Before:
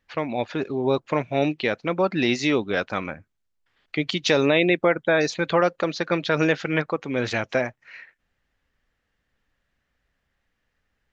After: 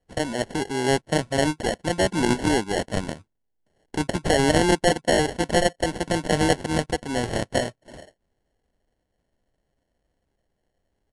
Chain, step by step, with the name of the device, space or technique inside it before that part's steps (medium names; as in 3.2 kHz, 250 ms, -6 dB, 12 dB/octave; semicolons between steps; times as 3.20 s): crushed at another speed (playback speed 2×; sample-and-hold 18×; playback speed 0.5×)